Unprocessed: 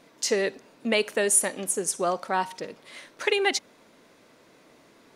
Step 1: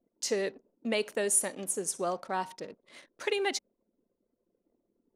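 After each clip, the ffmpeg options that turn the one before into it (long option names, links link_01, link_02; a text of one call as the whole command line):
ffmpeg -i in.wav -af "equalizer=frequency=2000:width=0.59:gain=-3.5,anlmdn=0.0158,volume=-5dB" out.wav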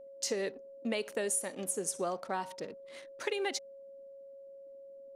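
ffmpeg -i in.wav -af "acompressor=threshold=-30dB:ratio=5,aeval=exprs='val(0)+0.00398*sin(2*PI*550*n/s)':channel_layout=same" out.wav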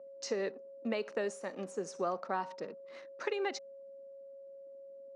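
ffmpeg -i in.wav -af "highpass=frequency=160:width=0.5412,highpass=frequency=160:width=1.3066,equalizer=frequency=280:width_type=q:width=4:gain=-3,equalizer=frequency=1200:width_type=q:width=4:gain=4,equalizer=frequency=2200:width_type=q:width=4:gain=-3,equalizer=frequency=3300:width_type=q:width=4:gain=-10,equalizer=frequency=4600:width_type=q:width=4:gain=-4,lowpass=frequency=5300:width=0.5412,lowpass=frequency=5300:width=1.3066" out.wav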